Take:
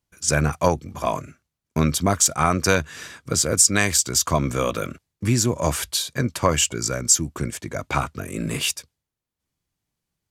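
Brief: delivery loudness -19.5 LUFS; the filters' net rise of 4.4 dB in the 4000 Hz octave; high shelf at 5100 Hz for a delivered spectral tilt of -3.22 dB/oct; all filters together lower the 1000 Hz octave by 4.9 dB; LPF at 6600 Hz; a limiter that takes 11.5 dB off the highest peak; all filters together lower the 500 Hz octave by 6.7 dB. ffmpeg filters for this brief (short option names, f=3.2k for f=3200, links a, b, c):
-af "lowpass=6.6k,equalizer=f=500:t=o:g=-7,equalizer=f=1k:t=o:g=-5,equalizer=f=4k:t=o:g=4.5,highshelf=f=5.1k:g=5,volume=6.5dB,alimiter=limit=-7dB:level=0:latency=1"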